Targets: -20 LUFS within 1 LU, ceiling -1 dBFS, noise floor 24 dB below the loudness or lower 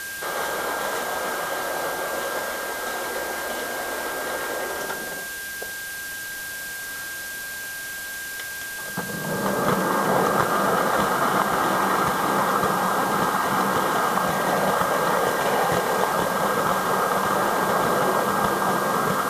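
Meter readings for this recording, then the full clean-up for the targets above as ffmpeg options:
steady tone 1.6 kHz; tone level -32 dBFS; noise floor -33 dBFS; noise floor target -48 dBFS; loudness -23.5 LUFS; peak level -3.5 dBFS; loudness target -20.0 LUFS
-> -af "bandreject=f=1600:w=30"
-af "afftdn=nr=15:nf=-33"
-af "volume=1.5,alimiter=limit=0.891:level=0:latency=1"

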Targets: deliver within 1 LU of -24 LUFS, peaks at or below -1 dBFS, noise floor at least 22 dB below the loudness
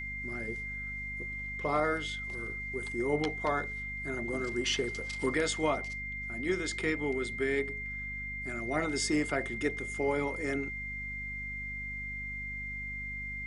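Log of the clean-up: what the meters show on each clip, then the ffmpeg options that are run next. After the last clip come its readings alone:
hum 50 Hz; highest harmonic 250 Hz; hum level -42 dBFS; steady tone 2.1 kHz; tone level -37 dBFS; loudness -33.5 LUFS; peak level -16.0 dBFS; loudness target -24.0 LUFS
-> -af "bandreject=f=50:t=h:w=4,bandreject=f=100:t=h:w=4,bandreject=f=150:t=h:w=4,bandreject=f=200:t=h:w=4,bandreject=f=250:t=h:w=4"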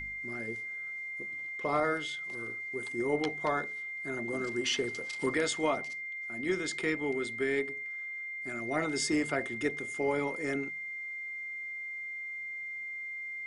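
hum not found; steady tone 2.1 kHz; tone level -37 dBFS
-> -af "bandreject=f=2100:w=30"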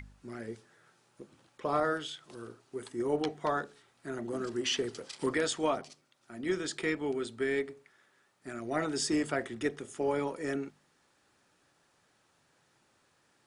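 steady tone not found; loudness -34.0 LUFS; peak level -18.0 dBFS; loudness target -24.0 LUFS
-> -af "volume=3.16"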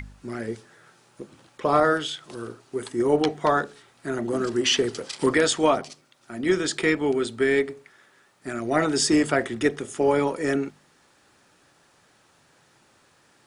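loudness -24.0 LUFS; peak level -8.0 dBFS; noise floor -61 dBFS

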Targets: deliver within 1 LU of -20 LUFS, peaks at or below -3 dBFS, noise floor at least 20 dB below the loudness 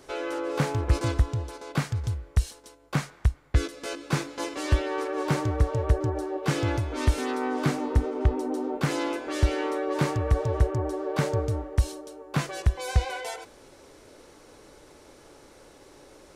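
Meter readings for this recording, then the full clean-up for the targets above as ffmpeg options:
loudness -28.0 LUFS; peak level -9.5 dBFS; loudness target -20.0 LUFS
-> -af "volume=2.51,alimiter=limit=0.708:level=0:latency=1"

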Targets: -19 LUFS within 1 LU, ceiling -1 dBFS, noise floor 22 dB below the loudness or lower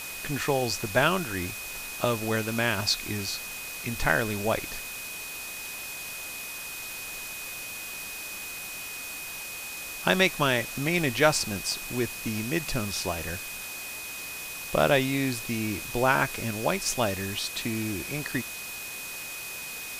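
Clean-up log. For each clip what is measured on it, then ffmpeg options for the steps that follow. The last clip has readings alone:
steady tone 2.5 kHz; tone level -39 dBFS; noise floor -38 dBFS; noise floor target -51 dBFS; loudness -29.0 LUFS; peak level -6.5 dBFS; loudness target -19.0 LUFS
-> -af "bandreject=f=2500:w=30"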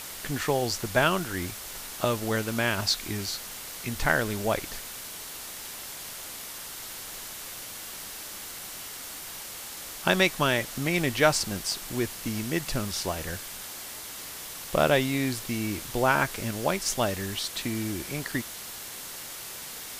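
steady tone not found; noise floor -40 dBFS; noise floor target -52 dBFS
-> -af "afftdn=nr=12:nf=-40"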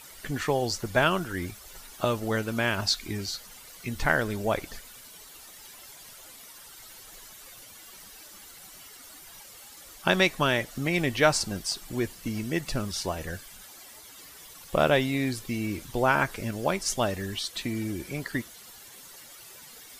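noise floor -49 dBFS; noise floor target -50 dBFS
-> -af "afftdn=nr=6:nf=-49"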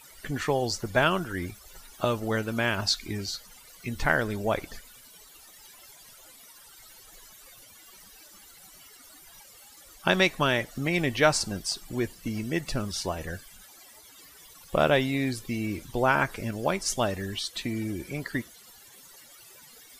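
noise floor -52 dBFS; loudness -28.0 LUFS; peak level -6.5 dBFS; loudness target -19.0 LUFS
-> -af "volume=2.82,alimiter=limit=0.891:level=0:latency=1"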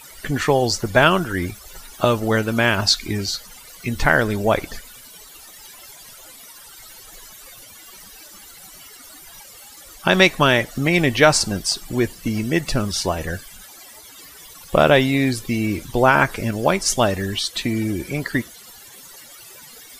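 loudness -19.5 LUFS; peak level -1.0 dBFS; noise floor -43 dBFS

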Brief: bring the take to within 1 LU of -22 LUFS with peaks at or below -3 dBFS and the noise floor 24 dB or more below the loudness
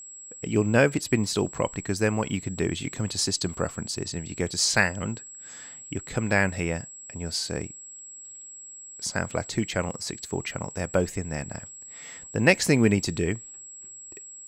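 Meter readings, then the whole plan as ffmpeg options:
steady tone 7.7 kHz; tone level -41 dBFS; loudness -26.5 LUFS; peak level -4.0 dBFS; loudness target -22.0 LUFS
-> -af "bandreject=f=7700:w=30"
-af "volume=1.68,alimiter=limit=0.708:level=0:latency=1"

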